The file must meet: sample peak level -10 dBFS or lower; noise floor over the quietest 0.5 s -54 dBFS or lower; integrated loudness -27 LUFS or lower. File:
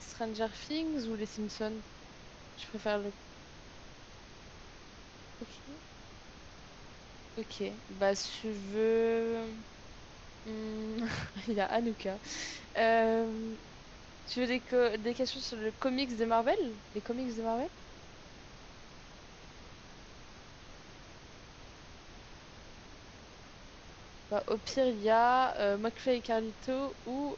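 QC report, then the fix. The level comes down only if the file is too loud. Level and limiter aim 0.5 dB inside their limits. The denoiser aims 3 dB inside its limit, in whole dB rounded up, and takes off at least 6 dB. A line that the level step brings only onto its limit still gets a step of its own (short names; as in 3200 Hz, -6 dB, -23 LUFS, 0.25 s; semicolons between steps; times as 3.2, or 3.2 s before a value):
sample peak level -16.5 dBFS: OK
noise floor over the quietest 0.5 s -52 dBFS: fail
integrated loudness -33.5 LUFS: OK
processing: denoiser 6 dB, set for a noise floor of -52 dBFS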